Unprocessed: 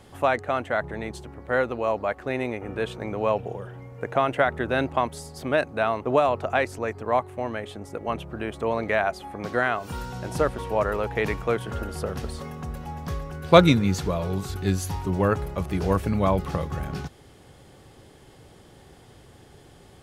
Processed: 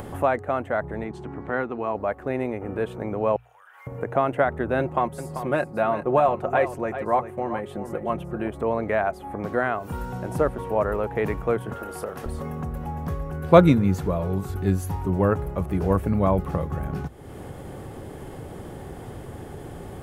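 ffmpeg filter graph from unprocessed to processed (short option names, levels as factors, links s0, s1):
-filter_complex "[0:a]asettb=1/sr,asplit=3[s0][s1][s2];[s0]atrim=end=1.044[s3];[s1]atrim=start=1.04:end=1.95,asetpts=PTS-STARTPTS,afade=t=in:d=0.004:c=qsin,afade=t=out:st=0.906:d=0.004:c=qsin,highpass=120,lowpass=5300,equalizer=f=550:w=5.1:g=-11.5[s4];[s2]atrim=start=1.946[s5];[s3][s4]acrossfade=d=0.004:c1=hsin:c2=qsin[s6];[s6][s5]acrossfade=d=0.004:c1=qsin:c2=hsin,asettb=1/sr,asplit=3[s7][s8][s9];[s7]atrim=end=3.364[s10];[s8]atrim=start=3.36:end=3.87,asetpts=PTS-STARTPTS,afade=t=in:d=0.004:c=qsin,afade=t=out:st=0.506:d=0.004:c=qsin,highpass=f=1200:w=0.5412,highpass=f=1200:w=1.3066,acompressor=threshold=0.002:ratio=3:attack=3.2:release=140:knee=1:detection=peak[s11];[s9]atrim=start=3.866[s12];[s10][s11]acrossfade=d=0.004:c1=hsin:c2=qsin[s13];[s13][s12]acrossfade=d=0.004:c1=qsin:c2=hsin,asettb=1/sr,asplit=3[s14][s15][s16];[s14]atrim=end=4.794[s17];[s15]atrim=start=4.79:end=8.48,asetpts=PTS-STARTPTS,afade=t=in:d=0.004:c=qsin,afade=t=out:st=3.686:d=0.004:c=qsin,aecho=1:1:5.6:0.52,atrim=end_sample=162729,aecho=1:1:391:0.266,atrim=end_sample=162729[s18];[s16]atrim=start=8.476[s19];[s17][s18]acrossfade=d=0.004:c1=hsin:c2=qsin[s20];[s20][s19]acrossfade=d=0.004:c1=qsin:c2=hsin,asettb=1/sr,asplit=3[s21][s22][s23];[s21]atrim=end=11.734[s24];[s22]atrim=start=11.73:end=12.26,asetpts=PTS-STARTPTS,afade=t=in:d=0.004:c=qsin,afade=t=out:st=0.526:d=0.004:c=qsin,highpass=f=720:p=1,asplit=2[s25][s26];[s26]adelay=28,volume=0.282[s27];[s25][s27]amix=inputs=2:normalize=0,atrim=end_sample=23373[s28];[s23]atrim=start=12.256[s29];[s24][s28]acrossfade=d=0.004:c1=hsin:c2=qsin[s30];[s30][s29]acrossfade=d=0.004:c1=qsin:c2=hsin,acompressor=mode=upward:threshold=0.0501:ratio=2.5,equalizer=f=4600:w=0.57:g=-14.5,bandreject=f=60:t=h:w=6,bandreject=f=120:t=h:w=6,volume=1.26"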